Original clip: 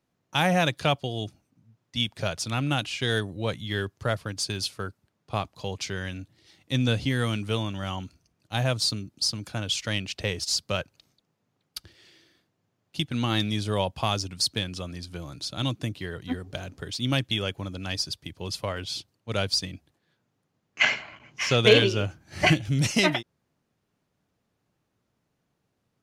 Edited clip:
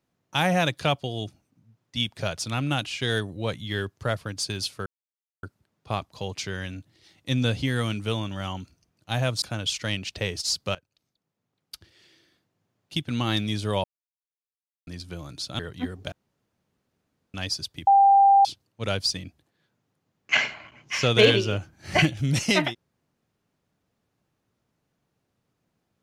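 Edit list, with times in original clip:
0:04.86: splice in silence 0.57 s
0:08.85–0:09.45: remove
0:10.78–0:13.19: fade in equal-power, from −20 dB
0:13.87–0:14.90: silence
0:15.62–0:16.07: remove
0:16.60–0:17.82: fill with room tone
0:18.35–0:18.93: beep over 792 Hz −12.5 dBFS

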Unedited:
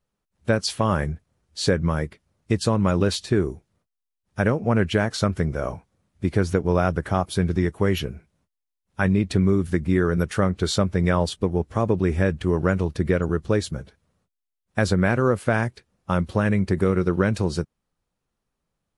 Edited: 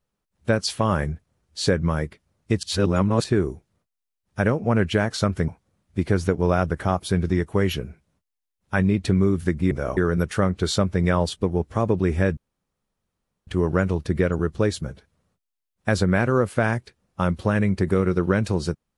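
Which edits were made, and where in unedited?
0:02.63–0:03.24: reverse
0:05.48–0:05.74: move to 0:09.97
0:12.37: splice in room tone 1.10 s

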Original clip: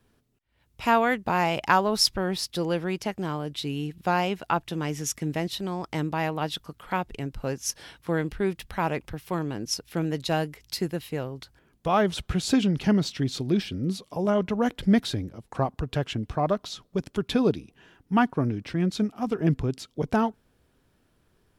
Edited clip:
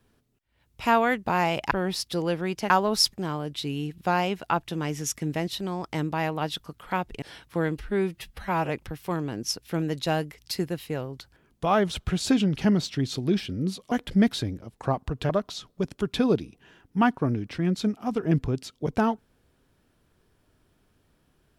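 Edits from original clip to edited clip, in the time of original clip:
0:01.71–0:02.14: move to 0:03.13
0:07.22–0:07.75: remove
0:08.31–0:08.92: time-stretch 1.5×
0:14.14–0:14.63: remove
0:16.01–0:16.45: remove

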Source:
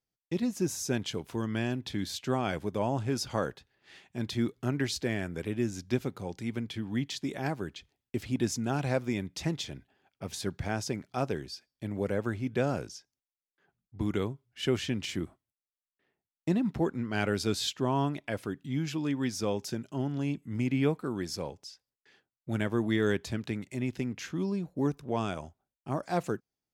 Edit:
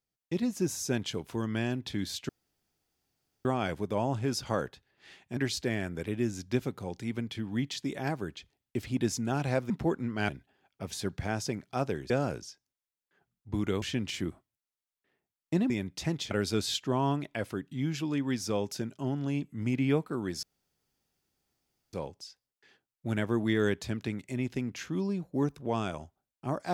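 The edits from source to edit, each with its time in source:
0:02.29: splice in room tone 1.16 s
0:04.21–0:04.76: remove
0:09.09–0:09.70: swap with 0:16.65–0:17.24
0:11.51–0:12.57: remove
0:14.29–0:14.77: remove
0:21.36: splice in room tone 1.50 s

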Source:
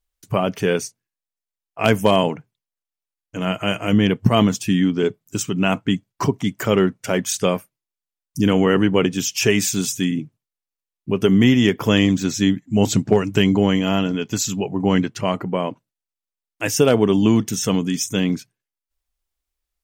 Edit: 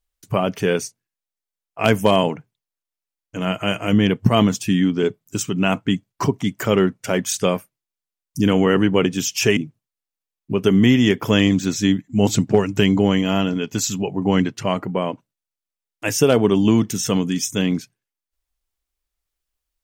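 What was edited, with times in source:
0:09.57–0:10.15: remove

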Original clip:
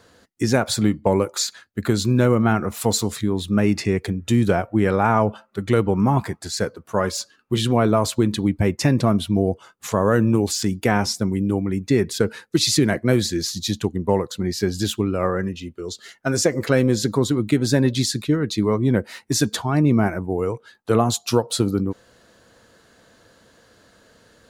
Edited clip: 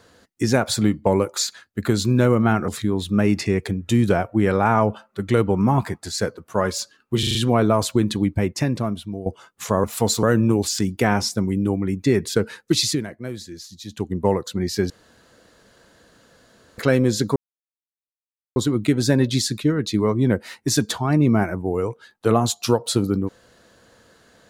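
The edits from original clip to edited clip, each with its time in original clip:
0:02.68–0:03.07: move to 0:10.07
0:07.58: stutter 0.04 s, 5 plays
0:08.40–0:09.49: fade out, to −14.5 dB
0:12.62–0:13.99: duck −13.5 dB, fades 0.29 s
0:14.74–0:16.62: fill with room tone
0:17.20: splice in silence 1.20 s

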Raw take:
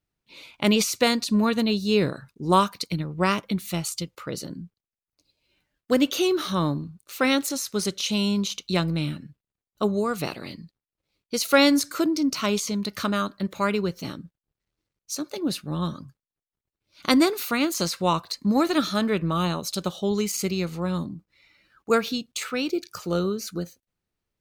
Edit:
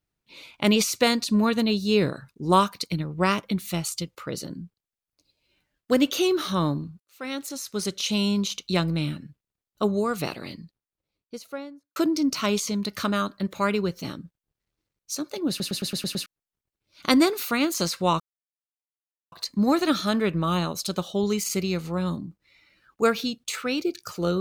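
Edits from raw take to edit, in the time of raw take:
0:07.00–0:08.07: fade in
0:10.45–0:11.96: fade out and dull
0:15.49: stutter in place 0.11 s, 7 plays
0:18.20: splice in silence 1.12 s

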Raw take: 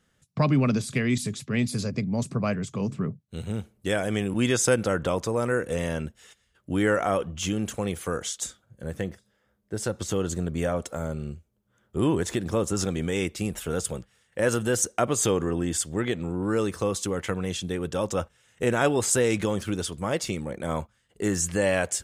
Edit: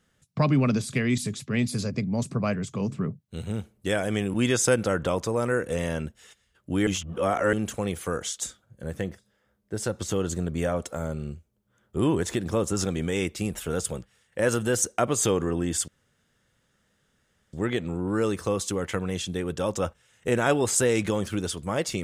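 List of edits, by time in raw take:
0:06.87–0:07.53: reverse
0:15.88: splice in room tone 1.65 s

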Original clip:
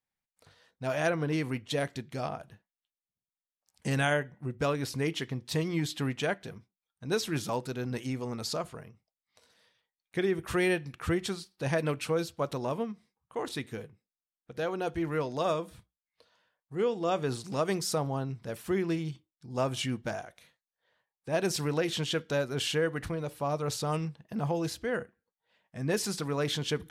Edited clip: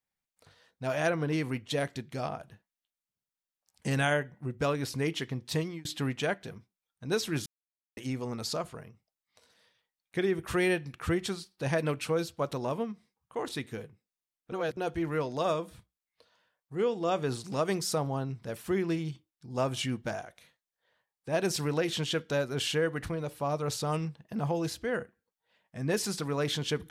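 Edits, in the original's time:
0:05.57–0:05.85: fade out
0:07.46–0:07.97: silence
0:14.52–0:14.77: reverse

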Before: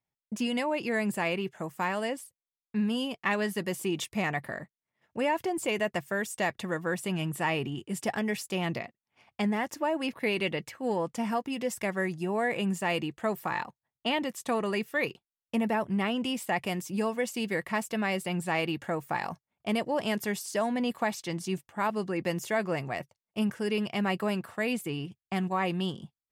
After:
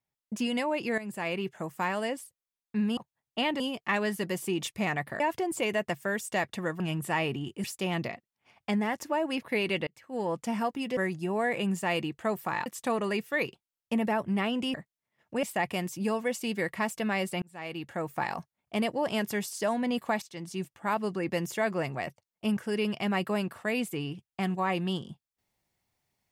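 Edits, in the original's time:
0:00.98–0:01.44: fade in linear, from −13 dB
0:04.57–0:05.26: move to 0:16.36
0:06.86–0:07.11: remove
0:07.95–0:08.35: remove
0:10.58–0:11.04: fade in
0:11.68–0:11.96: remove
0:13.65–0:14.28: move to 0:02.97
0:18.35–0:19.07: fade in
0:21.15–0:21.71: fade in, from −12 dB

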